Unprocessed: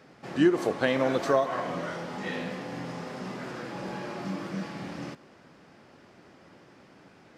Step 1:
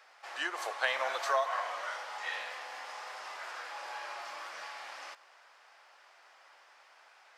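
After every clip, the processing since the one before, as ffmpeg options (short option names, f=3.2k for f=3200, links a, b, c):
-af "highpass=f=760:w=0.5412,highpass=f=760:w=1.3066"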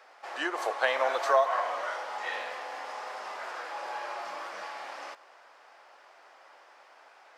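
-af "tiltshelf=f=890:g=6.5,volume=6dB"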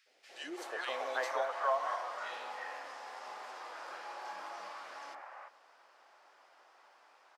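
-filter_complex "[0:a]acrossover=split=560|2100[a][b][c];[a]adelay=60[d];[b]adelay=340[e];[d][e][c]amix=inputs=3:normalize=0,volume=-5.5dB"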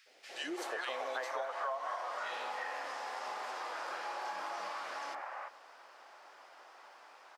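-af "acompressor=threshold=-43dB:ratio=4,volume=6.5dB"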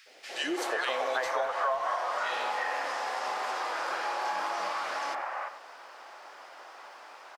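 -filter_complex "[0:a]asplit=2[a][b];[b]adelay=90,highpass=300,lowpass=3.4k,asoftclip=type=hard:threshold=-33.5dB,volume=-12dB[c];[a][c]amix=inputs=2:normalize=0,volume=8dB"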